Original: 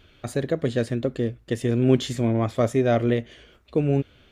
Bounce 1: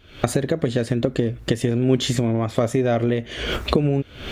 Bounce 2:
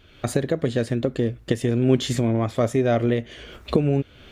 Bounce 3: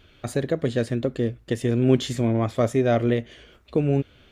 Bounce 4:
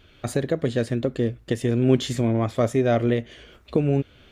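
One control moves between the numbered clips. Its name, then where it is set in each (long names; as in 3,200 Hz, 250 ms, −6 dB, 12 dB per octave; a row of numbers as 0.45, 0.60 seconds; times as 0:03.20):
camcorder AGC, rising by: 88, 34, 5, 13 dB per second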